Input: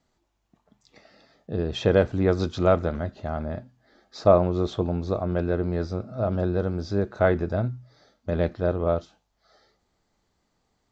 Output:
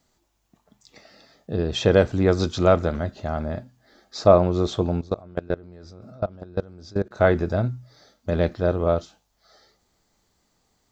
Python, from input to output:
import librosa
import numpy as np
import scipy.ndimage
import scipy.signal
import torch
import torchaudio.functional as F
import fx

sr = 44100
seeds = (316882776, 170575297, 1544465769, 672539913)

y = fx.high_shelf(x, sr, hz=5900.0, db=12.0)
y = fx.level_steps(y, sr, step_db=23, at=(5.01, 7.2))
y = y * 10.0 ** (2.5 / 20.0)